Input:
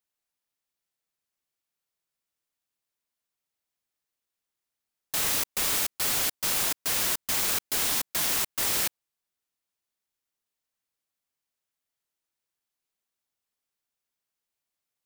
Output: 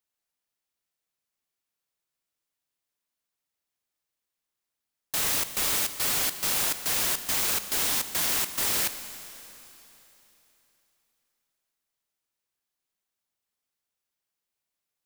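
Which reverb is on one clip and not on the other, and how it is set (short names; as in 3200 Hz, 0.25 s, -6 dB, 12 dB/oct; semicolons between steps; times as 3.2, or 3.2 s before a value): Schroeder reverb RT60 3.4 s, combs from 31 ms, DRR 10.5 dB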